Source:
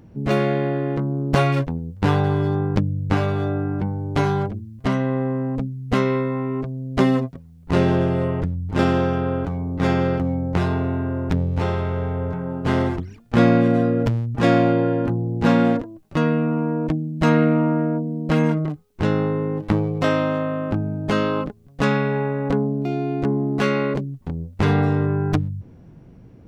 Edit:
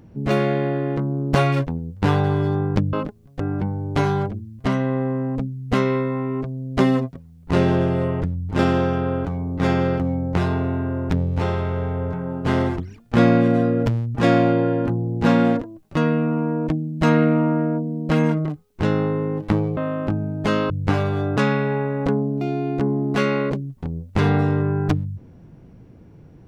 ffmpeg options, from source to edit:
-filter_complex "[0:a]asplit=6[s0][s1][s2][s3][s4][s5];[s0]atrim=end=2.932[s6];[s1]atrim=start=21.338:end=21.812[s7];[s2]atrim=start=3.598:end=19.972[s8];[s3]atrim=start=20.408:end=21.342[s9];[s4]atrim=start=2.928:end=3.602[s10];[s5]atrim=start=21.808[s11];[s6][s7]acrossfade=d=0.004:c1=hsin:c2=hsin[s12];[s12][s8]acrossfade=d=0.004:c1=hsin:c2=hsin[s13];[s13][s9]acrossfade=d=0.004:c1=hsin:c2=hsin[s14];[s14][s10]acrossfade=d=0.004:c1=hsin:c2=hsin[s15];[s15][s11]acrossfade=d=0.004:c1=hsin:c2=hsin"

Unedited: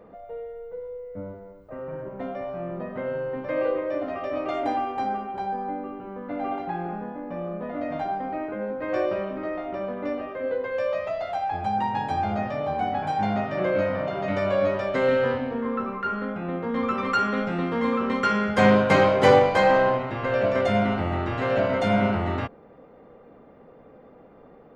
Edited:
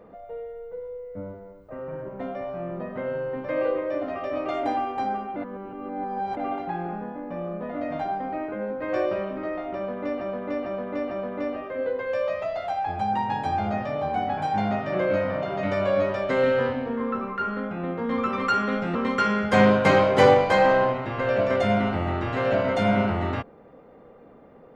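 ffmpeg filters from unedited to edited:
-filter_complex "[0:a]asplit=7[s0][s1][s2][s3][s4][s5][s6];[s0]atrim=end=5.362[s7];[s1]atrim=start=5.358:end=6.372,asetpts=PTS-STARTPTS,areverse[s8];[s2]atrim=start=6.368:end=10.212[s9];[s3]atrim=start=9.758:end=10.212[s10];[s4]atrim=start=9.758:end=10.212[s11];[s5]atrim=start=9.758:end=17.602[s12];[s6]atrim=start=17.998[s13];[s7][s8]acrossfade=d=0.004:c1=hsin:c2=hsin[s14];[s14][s9]acrossfade=d=0.004:c1=hsin:c2=hsin[s15];[s15][s10]acrossfade=d=0.004:c1=hsin:c2=hsin[s16];[s16][s11]acrossfade=d=0.004:c1=hsin:c2=hsin[s17];[s17][s12]acrossfade=d=0.004:c1=hsin:c2=hsin[s18];[s18][s13]acrossfade=d=0.004:c1=hsin:c2=hsin"

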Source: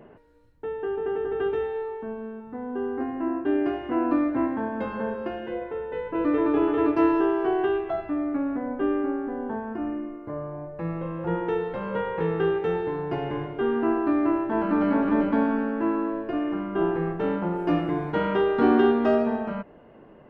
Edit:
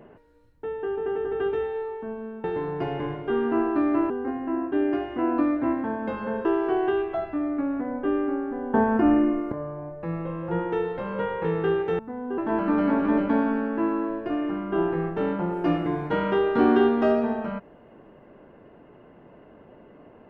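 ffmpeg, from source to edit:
-filter_complex "[0:a]asplit=8[s0][s1][s2][s3][s4][s5][s6][s7];[s0]atrim=end=2.442[s8];[s1]atrim=start=12.748:end=14.412[s9];[s2]atrim=start=2.828:end=5.182[s10];[s3]atrim=start=7.208:end=9.502[s11];[s4]atrim=start=9.498:end=10.282,asetpts=PTS-STARTPTS,volume=3.55[s12];[s5]atrim=start=10.278:end=12.752[s13];[s6]atrim=start=2.438:end=2.832[s14];[s7]atrim=start=14.408[s15];[s8][s9]acrossfade=d=0.004:c1=hsin:c2=hsin[s16];[s16][s10]acrossfade=d=0.004:c1=hsin:c2=hsin[s17];[s17][s11]acrossfade=d=0.004:c1=hsin:c2=hsin[s18];[s18][s12]acrossfade=d=0.004:c1=hsin:c2=hsin[s19];[s19][s13]acrossfade=d=0.004:c1=hsin:c2=hsin[s20];[s20][s14]acrossfade=d=0.004:c1=hsin:c2=hsin[s21];[s21][s15]acrossfade=d=0.004:c1=hsin:c2=hsin"

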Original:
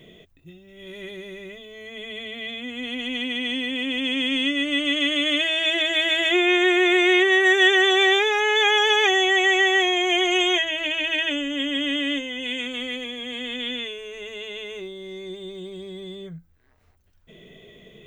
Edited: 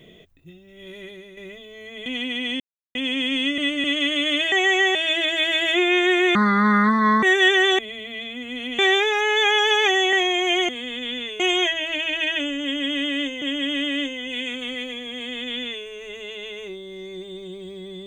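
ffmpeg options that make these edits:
-filter_complex "[0:a]asplit=17[s0][s1][s2][s3][s4][s5][s6][s7][s8][s9][s10][s11][s12][s13][s14][s15][s16];[s0]atrim=end=1.37,asetpts=PTS-STARTPTS,afade=t=out:st=0.87:d=0.5:silence=0.398107[s17];[s1]atrim=start=1.37:end=2.062,asetpts=PTS-STARTPTS,afade=t=in:d=0.004:c=hsin:silence=0.398107[s18];[s2]atrim=start=3.058:end=3.6,asetpts=PTS-STARTPTS,afade=t=out:st=0.538:d=0.004:c=hsin[s19];[s3]atrim=start=3.6:end=3.95,asetpts=PTS-STARTPTS,volume=0[s20];[s4]atrim=start=3.95:end=4.582,asetpts=PTS-STARTPTS,afade=t=in:d=0.004:c=hsin[s21];[s5]atrim=start=4.578:end=4.842,asetpts=PTS-STARTPTS,areverse[s22];[s6]atrim=start=4.838:end=5.522[s23];[s7]atrim=start=9.318:end=9.752[s24];[s8]atrim=start=5.518:end=6.924[s25];[s9]atrim=start=6.92:end=7.42,asetpts=PTS-STARTPTS,asetrate=25137,aresample=44100,atrim=end_sample=38684,asetpts=PTS-STARTPTS[s26];[s10]atrim=start=7.416:end=7.982[s27];[s11]atrim=start=2.058:end=3.062[s28];[s12]atrim=start=7.978:end=9.322[s29];[s13]atrim=start=9.748:end=10.312[s30];[s14]atrim=start=13.258:end=13.972[s31];[s15]atrim=start=10.308:end=12.332[s32];[s16]atrim=start=11.538[s33];[s17][s18]concat=n=2:v=0:a=1[s34];[s19][s20][s21]concat=n=3:v=0:a=1[s35];[s34][s35]acrossfade=d=0.004:c1=hsin:c2=hsin[s36];[s36][s22]acrossfade=d=0.004:c1=hsin:c2=hsin[s37];[s37][s23]acrossfade=d=0.004:c1=hsin:c2=hsin[s38];[s38][s24]acrossfade=d=0.004:c1=hsin:c2=hsin[s39];[s39][s25]acrossfade=d=0.004:c1=hsin:c2=hsin[s40];[s40][s26]acrossfade=d=0.004:c1=hsin:c2=hsin[s41];[s41][s27]acrossfade=d=0.004:c1=hsin:c2=hsin[s42];[s42][s28]acrossfade=d=0.004:c1=hsin:c2=hsin[s43];[s43][s29]acrossfade=d=0.004:c1=hsin:c2=hsin[s44];[s44][s30]acrossfade=d=0.004:c1=hsin:c2=hsin[s45];[s45][s31]acrossfade=d=0.004:c1=hsin:c2=hsin[s46];[s46][s32]acrossfade=d=0.004:c1=hsin:c2=hsin[s47];[s47][s33]acrossfade=d=0.004:c1=hsin:c2=hsin"

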